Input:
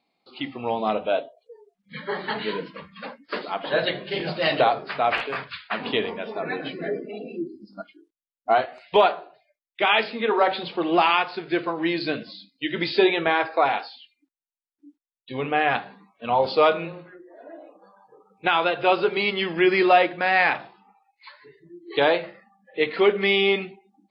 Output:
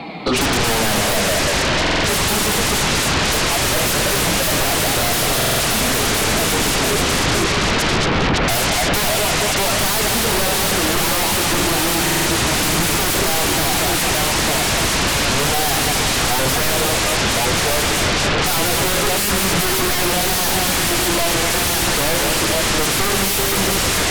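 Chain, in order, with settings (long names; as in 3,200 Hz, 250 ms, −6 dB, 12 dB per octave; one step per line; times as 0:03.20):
bass and treble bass +11 dB, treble −11 dB
echo with a time of its own for lows and highs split 320 Hz, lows 128 ms, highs 228 ms, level −9 dB
asymmetric clip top −27 dBFS
flanger 0.31 Hz, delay 5.9 ms, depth 6.5 ms, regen −22%
delay with pitch and tempo change per echo 94 ms, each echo −1 semitone, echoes 3, each echo −6 dB
mid-hump overdrive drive 33 dB, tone 1,800 Hz, clips at −8.5 dBFS
sine wavefolder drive 19 dB, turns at −9 dBFS
low-shelf EQ 260 Hz +9.5 dB
buffer that repeats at 0:01.81/0:05.37/0:12.03, samples 2,048, times 4
multiband upward and downward compressor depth 40%
level −7 dB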